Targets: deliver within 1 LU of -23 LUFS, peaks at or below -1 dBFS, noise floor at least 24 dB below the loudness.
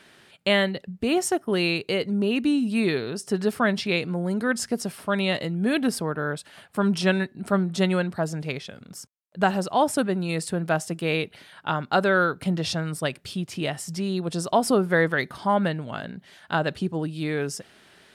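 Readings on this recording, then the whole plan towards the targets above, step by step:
loudness -25.0 LUFS; peak level -8.0 dBFS; loudness target -23.0 LUFS
-> trim +2 dB

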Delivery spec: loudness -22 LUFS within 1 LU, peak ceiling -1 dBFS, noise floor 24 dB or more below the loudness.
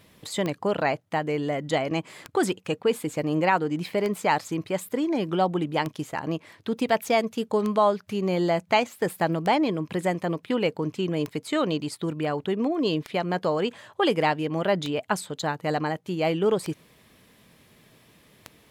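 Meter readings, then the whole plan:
clicks found 11; loudness -26.5 LUFS; peak level -9.0 dBFS; loudness target -22.0 LUFS
-> de-click; trim +4.5 dB

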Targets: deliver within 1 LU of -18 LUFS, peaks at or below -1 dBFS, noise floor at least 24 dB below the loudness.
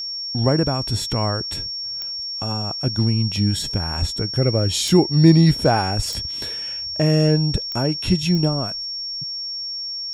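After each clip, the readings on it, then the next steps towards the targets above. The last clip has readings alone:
clicks found 5; steady tone 5.5 kHz; tone level -26 dBFS; loudness -20.0 LUFS; peak level -1.0 dBFS; loudness target -18.0 LUFS
-> de-click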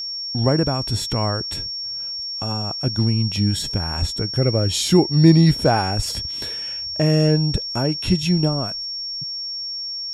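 clicks found 0; steady tone 5.5 kHz; tone level -26 dBFS
-> band-stop 5.5 kHz, Q 30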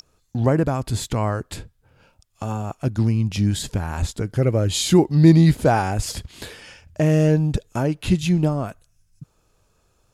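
steady tone not found; loudness -20.5 LUFS; peak level -1.5 dBFS; loudness target -18.0 LUFS
-> trim +2.5 dB; peak limiter -1 dBFS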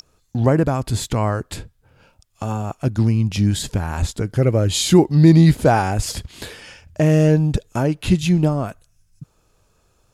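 loudness -18.0 LUFS; peak level -1.0 dBFS; noise floor -62 dBFS

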